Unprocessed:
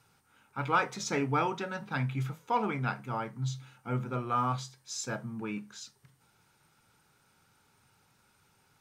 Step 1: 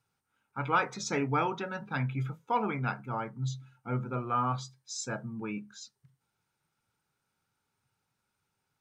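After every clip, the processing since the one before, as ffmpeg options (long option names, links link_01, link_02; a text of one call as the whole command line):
ffmpeg -i in.wav -af "afftdn=noise_reduction=14:noise_floor=-49" out.wav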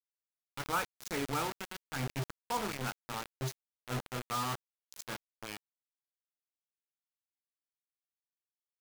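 ffmpeg -i in.wav -af "acrusher=bits=4:mix=0:aa=0.000001,volume=-6.5dB" out.wav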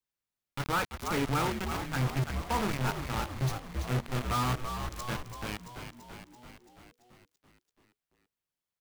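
ffmpeg -i in.wav -filter_complex "[0:a]bass=frequency=250:gain=7,treble=frequency=4000:gain=-4,asplit=9[link_01][link_02][link_03][link_04][link_05][link_06][link_07][link_08][link_09];[link_02]adelay=336,afreqshift=-61,volume=-8.5dB[link_10];[link_03]adelay=672,afreqshift=-122,volume=-12.5dB[link_11];[link_04]adelay=1008,afreqshift=-183,volume=-16.5dB[link_12];[link_05]adelay=1344,afreqshift=-244,volume=-20.5dB[link_13];[link_06]adelay=1680,afreqshift=-305,volume=-24.6dB[link_14];[link_07]adelay=2016,afreqshift=-366,volume=-28.6dB[link_15];[link_08]adelay=2352,afreqshift=-427,volume=-32.6dB[link_16];[link_09]adelay=2688,afreqshift=-488,volume=-36.6dB[link_17];[link_01][link_10][link_11][link_12][link_13][link_14][link_15][link_16][link_17]amix=inputs=9:normalize=0,asoftclip=type=hard:threshold=-30dB,volume=5.5dB" out.wav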